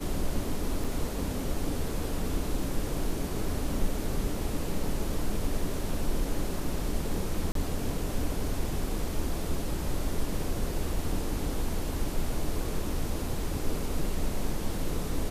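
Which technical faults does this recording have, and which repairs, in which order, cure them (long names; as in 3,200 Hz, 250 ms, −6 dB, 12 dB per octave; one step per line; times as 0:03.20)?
0:00.84: drop-out 4.8 ms
0:07.52–0:07.55: drop-out 33 ms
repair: repair the gap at 0:00.84, 4.8 ms
repair the gap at 0:07.52, 33 ms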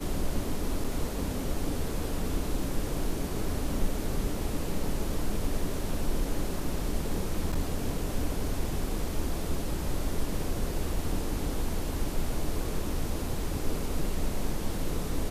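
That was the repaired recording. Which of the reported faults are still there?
none of them is left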